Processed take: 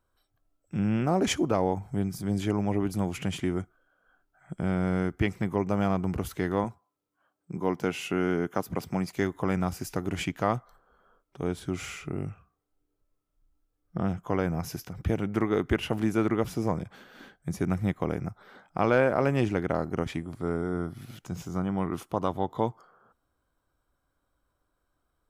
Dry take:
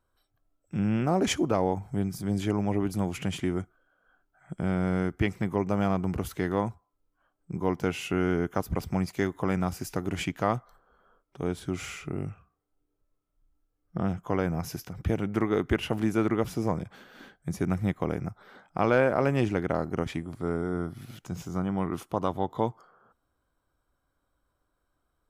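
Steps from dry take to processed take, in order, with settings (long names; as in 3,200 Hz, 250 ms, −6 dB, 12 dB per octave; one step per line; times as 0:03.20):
0:06.64–0:09.13: high-pass filter 140 Hz 12 dB per octave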